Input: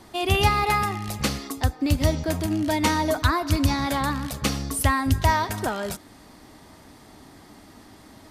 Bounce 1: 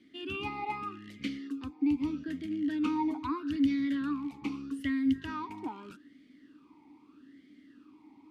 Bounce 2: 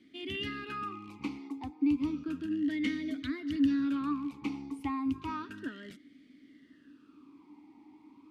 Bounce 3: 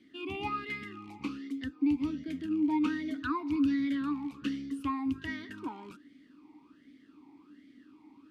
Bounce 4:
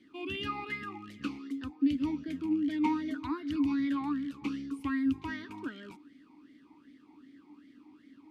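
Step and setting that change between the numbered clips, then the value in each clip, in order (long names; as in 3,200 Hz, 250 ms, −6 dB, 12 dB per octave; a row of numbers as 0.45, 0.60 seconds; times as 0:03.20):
formant filter swept between two vowels, speed: 0.8, 0.32, 1.3, 2.6 Hertz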